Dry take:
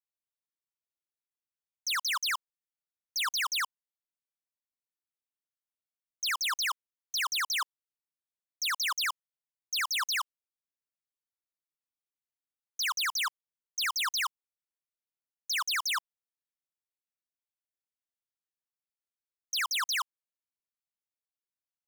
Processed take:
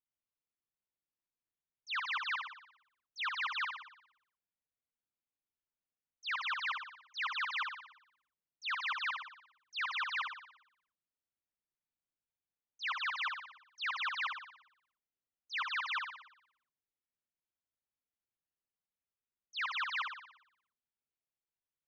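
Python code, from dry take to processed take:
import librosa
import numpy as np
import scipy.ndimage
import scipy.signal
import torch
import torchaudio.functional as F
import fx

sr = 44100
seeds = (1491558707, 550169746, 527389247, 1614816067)

p1 = scipy.signal.sosfilt(scipy.signal.butter(4, 3300.0, 'lowpass', fs=sr, output='sos'), x)
p2 = fx.low_shelf(p1, sr, hz=400.0, db=8.5)
p3 = p2 + fx.room_flutter(p2, sr, wall_m=10.1, rt60_s=0.71, dry=0)
y = p3 * librosa.db_to_amplitude(-5.5)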